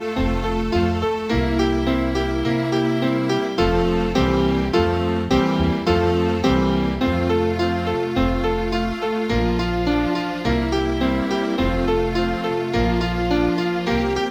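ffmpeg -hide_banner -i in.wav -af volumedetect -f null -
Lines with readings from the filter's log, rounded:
mean_volume: -19.7 dB
max_volume: -5.5 dB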